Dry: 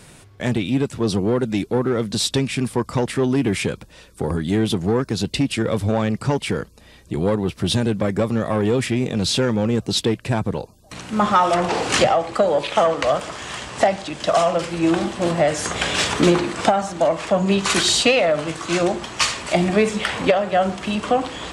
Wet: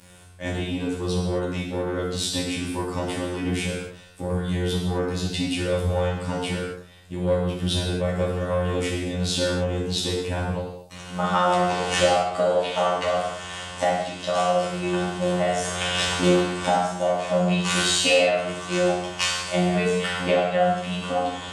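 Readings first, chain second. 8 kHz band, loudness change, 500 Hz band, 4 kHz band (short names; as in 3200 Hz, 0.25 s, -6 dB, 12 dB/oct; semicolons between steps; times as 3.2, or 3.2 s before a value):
-3.5 dB, -3.5 dB, -3.5 dB, -2.5 dB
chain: added harmonics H 3 -21 dB, 5 -31 dB, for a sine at -3 dBFS; robotiser 89.5 Hz; non-linear reverb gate 0.29 s falling, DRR -5 dB; gain -6 dB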